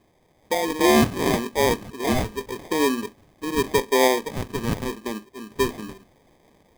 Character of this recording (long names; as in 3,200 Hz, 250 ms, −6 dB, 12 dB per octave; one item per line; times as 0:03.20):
a quantiser's noise floor 10 bits, dither triangular
sample-and-hold tremolo 2.7 Hz, depth 55%
phaser sweep stages 6, 0.81 Hz, lowest notch 530–1,300 Hz
aliases and images of a low sample rate 1,400 Hz, jitter 0%